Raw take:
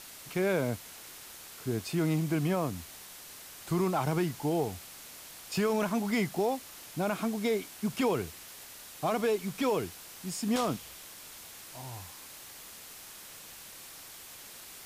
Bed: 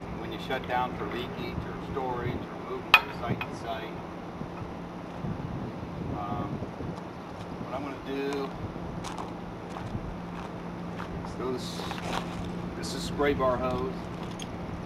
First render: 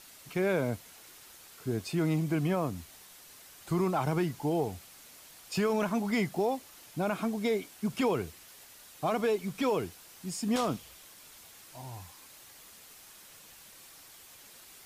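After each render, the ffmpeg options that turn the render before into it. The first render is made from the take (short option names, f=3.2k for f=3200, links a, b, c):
-af "afftdn=nr=6:nf=-48"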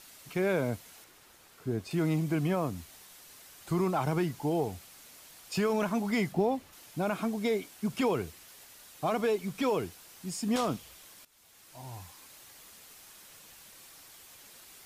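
-filter_complex "[0:a]asettb=1/sr,asplit=3[a][b][c];[a]atrim=end=1.044[d];[b]atrim=start=1.04:end=1.91,asetpts=PTS-STARTPTS,afade=t=in:d=0.004:c=qsin,afade=t=out:st=0.866:d=0.004:c=qsin,highshelf=f=2.6k:g=-7.5[e];[c]atrim=start=1.906[f];[d][e]acrossfade=d=0.004:c1=hsin:c2=qsin[g];[g][f]acrossfade=d=0.004:c1=qsin:c2=hsin,asettb=1/sr,asplit=3[h][i][j];[h]atrim=end=6.324[k];[i]atrim=start=6.32:end=6.73,asetpts=PTS-STARTPTS,afade=t=in:d=0.004:c=qsin,afade=t=out:st=0.406:d=0.004:c=qsin,bass=f=250:g=9,treble=f=4k:g=-7[l];[j]atrim=start=6.726[m];[k][l]acrossfade=d=0.004:c1=hsin:c2=qsin[n];[n][m]acrossfade=d=0.004:c1=qsin:c2=hsin,asplit=2[o][p];[o]atrim=end=11.25,asetpts=PTS-STARTPTS,afade=t=out:st=11.246:d=0.004:c=hsin:silence=0.133352[q];[p]atrim=start=11.25,asetpts=PTS-STARTPTS,afade=t=in:d=0.67:silence=0.133352[r];[q][r]concat=n=2:v=0:a=1"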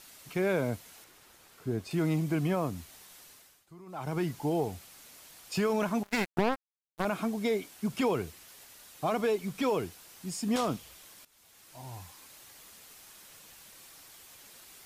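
-filter_complex "[0:a]asettb=1/sr,asplit=3[a][b][c];[a]atrim=end=6.034[d];[b]atrim=start=6.03:end=7.05,asetpts=PTS-STARTPTS,afade=t=in:d=0.004:c=qsin,afade=t=out:st=1.016:d=0.004:c=qsin,acrusher=bits=3:mix=0:aa=0.5[e];[c]atrim=start=7.046[f];[d][e]acrossfade=d=0.004:c1=hsin:c2=qsin[g];[g][f]acrossfade=d=0.004:c1=qsin:c2=hsin,asplit=3[h][i][j];[h]atrim=end=3.66,asetpts=PTS-STARTPTS,afade=t=out:st=3.23:d=0.43:silence=0.0794328[k];[i]atrim=start=3.66:end=3.86,asetpts=PTS-STARTPTS,volume=-22dB[l];[j]atrim=start=3.86,asetpts=PTS-STARTPTS,afade=t=in:d=0.43:silence=0.0794328[m];[k][l][m]concat=n=3:v=0:a=1"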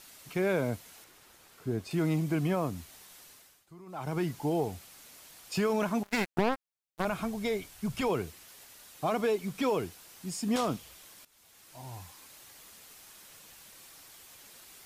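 -filter_complex "[0:a]asplit=3[a][b][c];[a]afade=t=out:st=7.06:d=0.02[d];[b]asubboost=boost=8.5:cutoff=87,afade=t=in:st=7.06:d=0.02,afade=t=out:st=8.08:d=0.02[e];[c]afade=t=in:st=8.08:d=0.02[f];[d][e][f]amix=inputs=3:normalize=0"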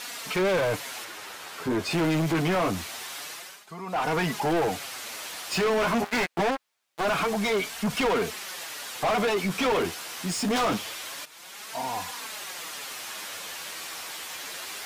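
-filter_complex "[0:a]flanger=delay=4.1:depth=8.3:regen=-2:speed=0.25:shape=sinusoidal,asplit=2[a][b];[b]highpass=f=720:p=1,volume=31dB,asoftclip=type=tanh:threshold=-17dB[c];[a][c]amix=inputs=2:normalize=0,lowpass=f=3.5k:p=1,volume=-6dB"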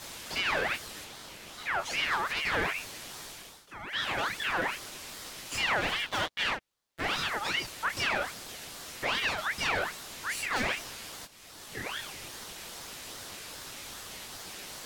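-af "flanger=delay=16.5:depth=6.3:speed=1.3,aeval=exprs='val(0)*sin(2*PI*1800*n/s+1800*0.45/2.5*sin(2*PI*2.5*n/s))':c=same"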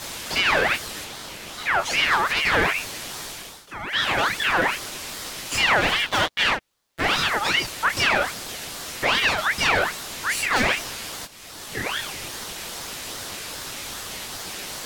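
-af "volume=9.5dB"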